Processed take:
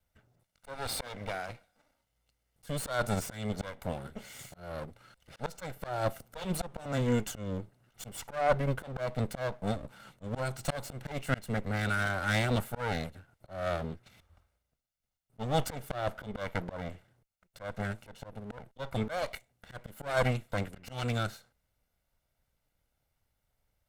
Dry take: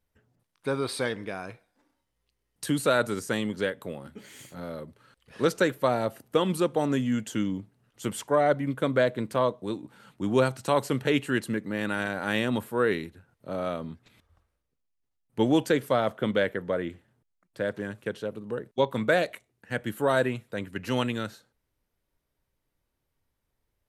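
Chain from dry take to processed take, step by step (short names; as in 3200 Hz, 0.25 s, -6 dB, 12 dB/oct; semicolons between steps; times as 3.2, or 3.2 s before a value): minimum comb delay 1.4 ms; auto swell 0.269 s; gain +2 dB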